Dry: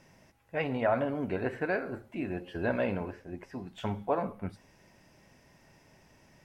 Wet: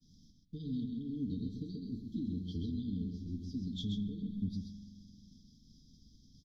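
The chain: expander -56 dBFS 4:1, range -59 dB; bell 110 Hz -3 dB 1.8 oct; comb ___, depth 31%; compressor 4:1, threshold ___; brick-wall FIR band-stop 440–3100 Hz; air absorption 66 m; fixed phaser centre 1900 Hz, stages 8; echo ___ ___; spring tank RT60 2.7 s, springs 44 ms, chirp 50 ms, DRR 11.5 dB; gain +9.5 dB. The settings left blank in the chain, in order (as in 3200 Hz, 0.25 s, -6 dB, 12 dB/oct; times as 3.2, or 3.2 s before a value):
3.9 ms, -37 dBFS, 0.131 s, -5.5 dB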